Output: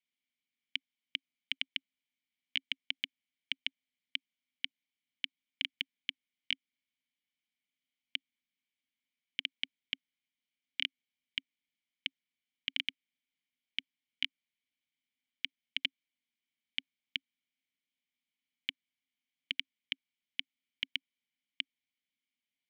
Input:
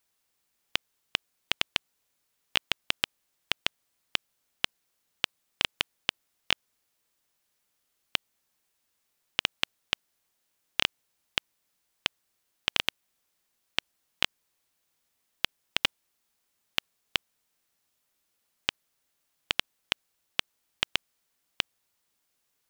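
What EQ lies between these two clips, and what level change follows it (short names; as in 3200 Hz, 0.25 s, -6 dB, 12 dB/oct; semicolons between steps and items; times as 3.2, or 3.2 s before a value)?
vowel filter i; band shelf 580 Hz -15.5 dB 2.3 oct; +3.5 dB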